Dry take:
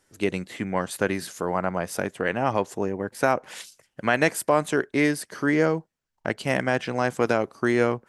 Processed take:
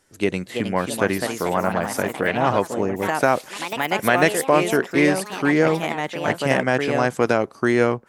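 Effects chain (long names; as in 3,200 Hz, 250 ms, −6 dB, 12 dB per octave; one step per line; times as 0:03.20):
delay with pitch and tempo change per echo 369 ms, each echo +3 semitones, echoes 3, each echo −6 dB
level +3.5 dB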